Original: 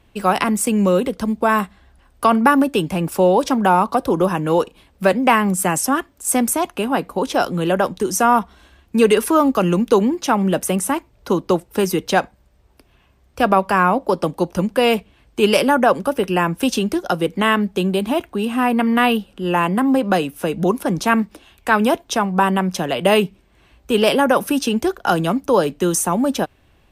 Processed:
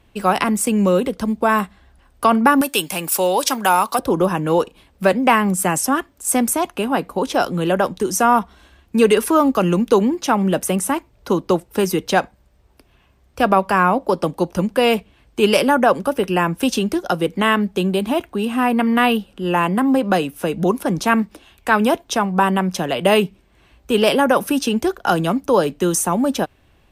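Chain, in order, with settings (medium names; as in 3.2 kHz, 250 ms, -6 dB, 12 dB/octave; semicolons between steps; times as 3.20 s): 2.61–3.99 s: tilt EQ +4 dB/octave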